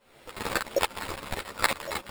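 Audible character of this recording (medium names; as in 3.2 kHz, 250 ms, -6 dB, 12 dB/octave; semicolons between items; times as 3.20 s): a quantiser's noise floor 10-bit, dither triangular; tremolo saw up 3.5 Hz, depth 85%; aliases and images of a low sample rate 6.1 kHz, jitter 0%; a shimmering, thickened sound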